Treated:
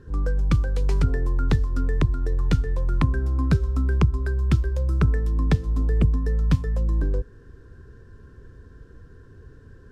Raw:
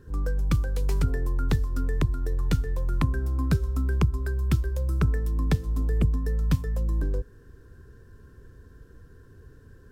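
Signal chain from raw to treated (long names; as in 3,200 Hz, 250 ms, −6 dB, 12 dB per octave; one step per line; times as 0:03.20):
high-frequency loss of the air 62 metres
level +3.5 dB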